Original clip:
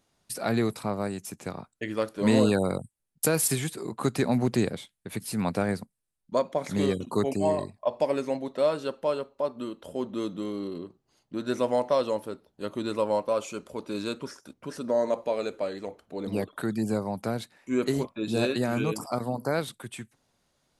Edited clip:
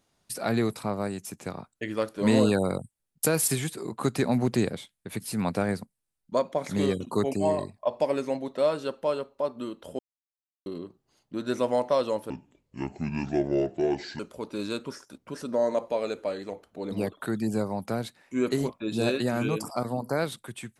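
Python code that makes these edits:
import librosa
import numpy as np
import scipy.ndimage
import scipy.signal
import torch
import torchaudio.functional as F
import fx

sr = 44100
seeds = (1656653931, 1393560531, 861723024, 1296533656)

y = fx.edit(x, sr, fx.silence(start_s=9.99, length_s=0.67),
    fx.speed_span(start_s=12.3, length_s=1.25, speed=0.66), tone=tone)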